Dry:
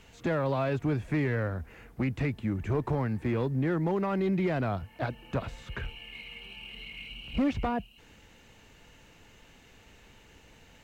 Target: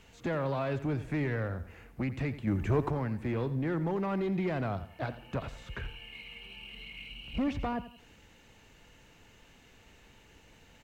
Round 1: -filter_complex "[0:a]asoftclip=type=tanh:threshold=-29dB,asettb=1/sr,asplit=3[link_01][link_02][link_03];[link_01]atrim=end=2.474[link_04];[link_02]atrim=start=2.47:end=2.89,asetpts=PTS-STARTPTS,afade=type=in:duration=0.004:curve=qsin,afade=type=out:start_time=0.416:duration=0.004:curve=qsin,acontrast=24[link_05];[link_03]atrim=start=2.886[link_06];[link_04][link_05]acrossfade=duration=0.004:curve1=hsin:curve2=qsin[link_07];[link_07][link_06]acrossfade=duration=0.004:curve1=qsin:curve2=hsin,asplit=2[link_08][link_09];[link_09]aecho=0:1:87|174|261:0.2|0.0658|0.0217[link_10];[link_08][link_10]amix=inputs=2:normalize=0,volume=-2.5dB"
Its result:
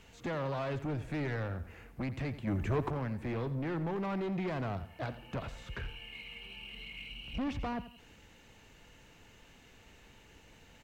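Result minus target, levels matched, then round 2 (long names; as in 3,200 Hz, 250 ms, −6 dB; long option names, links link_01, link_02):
soft clipping: distortion +12 dB
-filter_complex "[0:a]asoftclip=type=tanh:threshold=-20dB,asettb=1/sr,asplit=3[link_01][link_02][link_03];[link_01]atrim=end=2.474[link_04];[link_02]atrim=start=2.47:end=2.89,asetpts=PTS-STARTPTS,afade=type=in:duration=0.004:curve=qsin,afade=type=out:start_time=0.416:duration=0.004:curve=qsin,acontrast=24[link_05];[link_03]atrim=start=2.886[link_06];[link_04][link_05]acrossfade=duration=0.004:curve1=hsin:curve2=qsin[link_07];[link_07][link_06]acrossfade=duration=0.004:curve1=qsin:curve2=hsin,asplit=2[link_08][link_09];[link_09]aecho=0:1:87|174|261:0.2|0.0658|0.0217[link_10];[link_08][link_10]amix=inputs=2:normalize=0,volume=-2.5dB"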